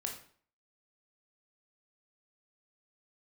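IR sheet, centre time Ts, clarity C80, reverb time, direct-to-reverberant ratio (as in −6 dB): 23 ms, 11.0 dB, 0.50 s, 1.0 dB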